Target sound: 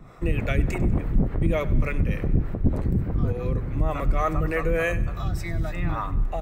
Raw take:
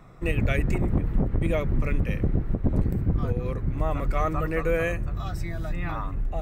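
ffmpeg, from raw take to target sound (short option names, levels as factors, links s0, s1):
-filter_complex "[0:a]asplit=2[s0][s1];[s1]alimiter=limit=0.0841:level=0:latency=1,volume=1.12[s2];[s0][s2]amix=inputs=2:normalize=0,acrossover=split=420[s3][s4];[s3]aeval=exprs='val(0)*(1-0.7/2+0.7/2*cos(2*PI*3.4*n/s))':c=same[s5];[s4]aeval=exprs='val(0)*(1-0.7/2-0.7/2*cos(2*PI*3.4*n/s))':c=same[s6];[s5][s6]amix=inputs=2:normalize=0,aecho=1:1:98|196|294|392:0.119|0.063|0.0334|0.0177"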